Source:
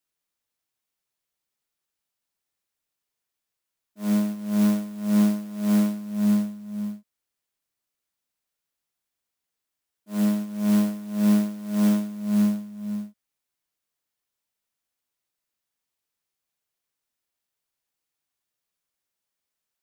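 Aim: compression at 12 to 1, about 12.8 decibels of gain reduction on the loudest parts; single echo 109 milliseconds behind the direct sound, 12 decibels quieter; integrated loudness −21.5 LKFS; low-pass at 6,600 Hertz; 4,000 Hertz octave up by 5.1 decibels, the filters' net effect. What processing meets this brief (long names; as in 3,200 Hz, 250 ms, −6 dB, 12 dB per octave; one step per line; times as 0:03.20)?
low-pass filter 6,600 Hz
parametric band 4,000 Hz +7 dB
downward compressor 12 to 1, threshold −29 dBFS
single-tap delay 109 ms −12 dB
level +13.5 dB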